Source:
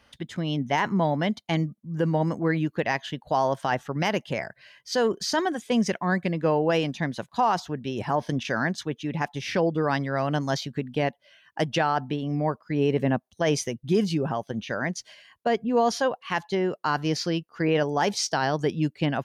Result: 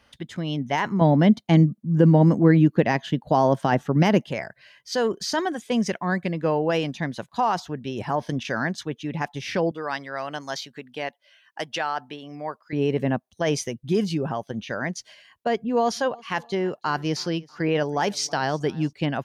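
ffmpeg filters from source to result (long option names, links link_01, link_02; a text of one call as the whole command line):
ffmpeg -i in.wav -filter_complex "[0:a]asettb=1/sr,asplit=3[link_01][link_02][link_03];[link_01]atrim=end=1.014[link_04];[link_02]atrim=start=1.01:end=4.29,asetpts=PTS-STARTPTS,afade=type=in:duration=0.004:curve=qsin,afade=type=out:start_time=3.276:duration=0.004:curve=qsin,equalizer=frequency=210:width=0.48:gain=11[link_05];[link_03]atrim=start=4.286[link_06];[link_04][link_05]acrossfade=duration=0.004:curve1=hsin:curve2=qsin[link_07];[link_07][link_06]acrossfade=duration=0.004:curve1=qsin:curve2=hsin,asettb=1/sr,asplit=3[link_08][link_09][link_10];[link_08]atrim=end=9.714[link_11];[link_09]atrim=start=9.71:end=12.73,asetpts=PTS-STARTPTS,afade=type=in:duration=0.004:curve=qsin,afade=type=out:start_time=3.016:duration=0.004:curve=qsin,highpass=frequency=880:poles=1[link_12];[link_10]atrim=start=12.726[link_13];[link_11][link_12]acrossfade=duration=0.004:curve1=hsin:curve2=qsin[link_14];[link_14][link_13]acrossfade=duration=0.004:curve1=qsin:curve2=hsin,asettb=1/sr,asplit=3[link_15][link_16][link_17];[link_15]atrim=end=15.544[link_18];[link_16]atrim=start=15.54:end=18.93,asetpts=PTS-STARTPTS,afade=type=in:duration=0.004:curve=qsin,afade=type=out:start_time=3.386:duration=0.004:curve=qsin,aecho=1:1:322|644:0.0631|0.024,atrim=end_sample=149499[link_19];[link_17]atrim=start=18.926[link_20];[link_18][link_19]acrossfade=duration=0.004:curve1=hsin:curve2=qsin[link_21];[link_21][link_20]acrossfade=duration=0.004:curve1=qsin:curve2=hsin" out.wav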